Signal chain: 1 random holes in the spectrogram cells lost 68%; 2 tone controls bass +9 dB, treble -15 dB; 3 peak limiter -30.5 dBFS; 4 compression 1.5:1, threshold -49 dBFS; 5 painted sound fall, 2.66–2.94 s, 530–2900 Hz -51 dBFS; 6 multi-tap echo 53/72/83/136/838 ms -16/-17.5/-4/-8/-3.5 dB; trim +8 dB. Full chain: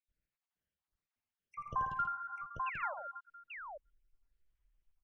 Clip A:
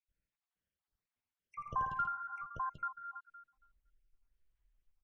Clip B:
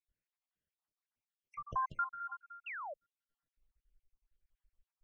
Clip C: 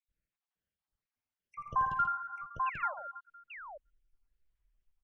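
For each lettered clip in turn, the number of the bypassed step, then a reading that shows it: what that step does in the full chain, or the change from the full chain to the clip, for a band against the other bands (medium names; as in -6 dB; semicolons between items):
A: 5, 500 Hz band -9.0 dB; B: 6, echo-to-direct 0.0 dB to none; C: 4, momentary loudness spread change +4 LU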